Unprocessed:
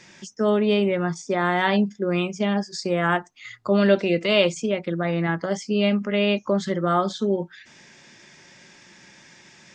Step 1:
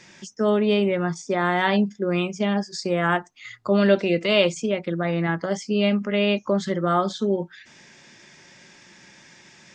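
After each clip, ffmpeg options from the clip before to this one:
-af anull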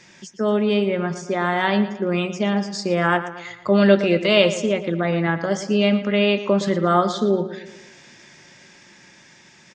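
-filter_complex "[0:a]dynaudnorm=f=530:g=9:m=5.5dB,asplit=2[a][b];[b]adelay=115,lowpass=f=4.3k:p=1,volume=-12dB,asplit=2[c][d];[d]adelay=115,lowpass=f=4.3k:p=1,volume=0.51,asplit=2[e][f];[f]adelay=115,lowpass=f=4.3k:p=1,volume=0.51,asplit=2[g][h];[h]adelay=115,lowpass=f=4.3k:p=1,volume=0.51,asplit=2[i][j];[j]adelay=115,lowpass=f=4.3k:p=1,volume=0.51[k];[c][e][g][i][k]amix=inputs=5:normalize=0[l];[a][l]amix=inputs=2:normalize=0"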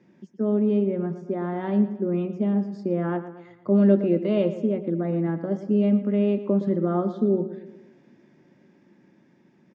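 -af "bandpass=f=260:t=q:w=1.6:csg=0,volume=1.5dB"

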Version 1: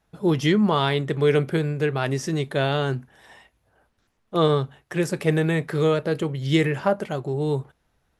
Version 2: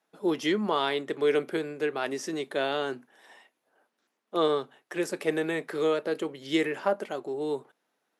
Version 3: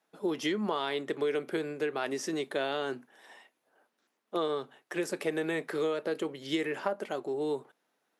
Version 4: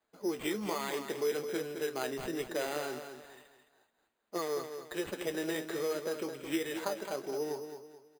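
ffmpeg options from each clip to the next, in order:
-af "highpass=f=250:w=0.5412,highpass=f=250:w=1.3066,volume=-4.5dB"
-af "acompressor=threshold=-27dB:ratio=6"
-af "flanger=delay=8:depth=8:regen=53:speed=1.2:shape=sinusoidal,acrusher=samples=8:mix=1:aa=0.000001,aecho=1:1:215|430|645|860:0.376|0.132|0.046|0.0161"

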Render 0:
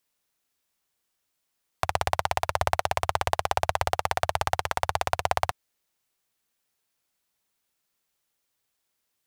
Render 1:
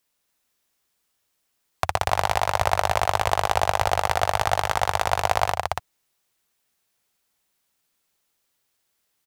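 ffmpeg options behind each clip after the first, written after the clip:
-af "aecho=1:1:139.9|282.8:0.282|0.631,volume=3dB"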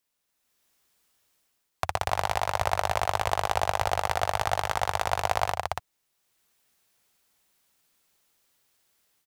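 -af "dynaudnorm=f=340:g=3:m=9dB,volume=-5.5dB"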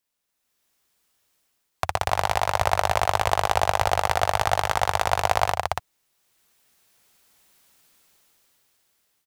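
-af "dynaudnorm=f=250:g=13:m=15dB,volume=-1dB"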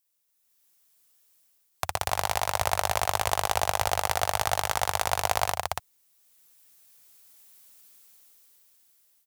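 -af "crystalizer=i=2:c=0,volume=-5.5dB"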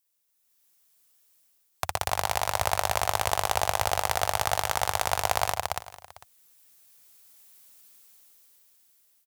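-af "aecho=1:1:449:0.119"

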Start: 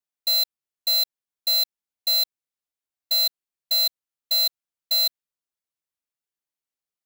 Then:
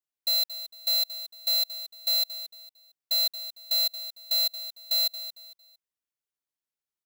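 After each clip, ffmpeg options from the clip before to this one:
-af "aecho=1:1:227|454|681:0.224|0.0672|0.0201,volume=-4dB"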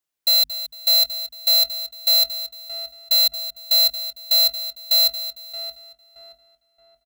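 -filter_complex "[0:a]bandreject=f=50:t=h:w=6,bandreject=f=100:t=h:w=6,bandreject=f=150:t=h:w=6,bandreject=f=200:t=h:w=6,bandreject=f=250:t=h:w=6,asplit=2[a][b];[b]adelay=624,lowpass=f=1.9k:p=1,volume=-8dB,asplit=2[c][d];[d]adelay=624,lowpass=f=1.9k:p=1,volume=0.44,asplit=2[e][f];[f]adelay=624,lowpass=f=1.9k:p=1,volume=0.44,asplit=2[g][h];[h]adelay=624,lowpass=f=1.9k:p=1,volume=0.44,asplit=2[i][j];[j]adelay=624,lowpass=f=1.9k:p=1,volume=0.44[k];[a][c][e][g][i][k]amix=inputs=6:normalize=0,volume=8.5dB"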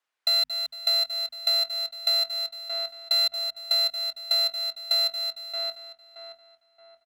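-af "acompressor=threshold=-23dB:ratio=6,bandpass=f=1.4k:t=q:w=0.83:csg=0,volume=8.5dB"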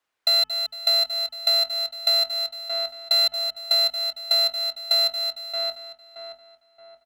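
-af "lowshelf=f=490:g=8.5,bandreject=f=433:t=h:w=4,bandreject=f=866:t=h:w=4,bandreject=f=1.299k:t=h:w=4,bandreject=f=1.732k:t=h:w=4,bandreject=f=2.165k:t=h:w=4,bandreject=f=2.598k:t=h:w=4,bandreject=f=3.031k:t=h:w=4,volume=3dB"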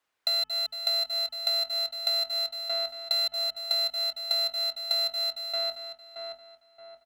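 -af "acompressor=threshold=-27dB:ratio=3"

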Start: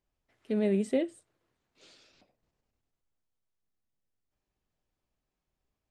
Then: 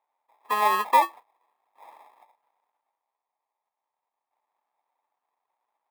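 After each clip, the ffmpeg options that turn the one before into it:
-af "acrusher=samples=30:mix=1:aa=0.000001,highpass=f=890:t=q:w=4.4,equalizer=f=6.1k:w=1.2:g=-11.5,volume=6dB"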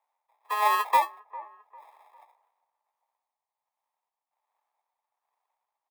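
-filter_complex "[0:a]acrossover=split=410|2000[a][b][c];[a]acrusher=bits=4:mix=0:aa=0.000001[d];[b]aecho=1:1:400|800|1200:0.119|0.0392|0.0129[e];[d][e][c]amix=inputs=3:normalize=0,tremolo=f=1.3:d=0.51"

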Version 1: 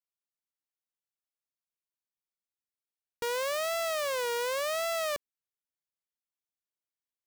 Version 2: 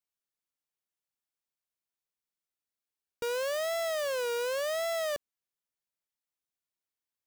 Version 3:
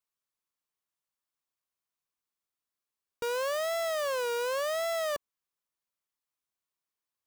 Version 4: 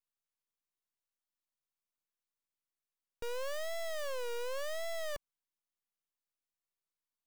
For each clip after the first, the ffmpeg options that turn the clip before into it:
-af "asoftclip=type=tanh:threshold=-39.5dB,aeval=exprs='0.0106*(cos(1*acos(clip(val(0)/0.0106,-1,1)))-cos(1*PI/2))+0.000188*(cos(4*acos(clip(val(0)/0.0106,-1,1)))-cos(4*PI/2))+0.000211*(cos(6*acos(clip(val(0)/0.0106,-1,1)))-cos(6*PI/2))+0.00211*(cos(7*acos(clip(val(0)/0.0106,-1,1)))-cos(7*PI/2))+0.000237*(cos(8*acos(clip(val(0)/0.0106,-1,1)))-cos(8*PI/2))':c=same,volume=8.5dB"
-af "equalizer=f=1.1k:w=3.5:g=7"
-af "aeval=exprs='max(val(0),0)':c=same,volume=-2.5dB"

